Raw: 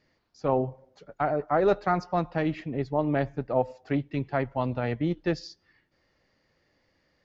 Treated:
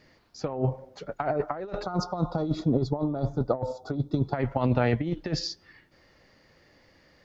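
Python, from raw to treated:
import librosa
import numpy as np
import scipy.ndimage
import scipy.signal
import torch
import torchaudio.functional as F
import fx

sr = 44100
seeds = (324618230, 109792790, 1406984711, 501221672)

y = fx.spec_box(x, sr, start_s=1.83, length_s=2.51, low_hz=1500.0, high_hz=3300.0, gain_db=-24)
y = fx.over_compress(y, sr, threshold_db=-30.0, ratio=-0.5)
y = F.gain(torch.from_numpy(y), 5.0).numpy()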